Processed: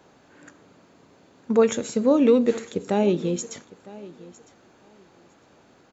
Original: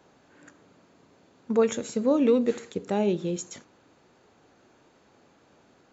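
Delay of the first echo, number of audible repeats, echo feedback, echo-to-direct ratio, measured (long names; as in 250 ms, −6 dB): 957 ms, 2, 18%, −20.0 dB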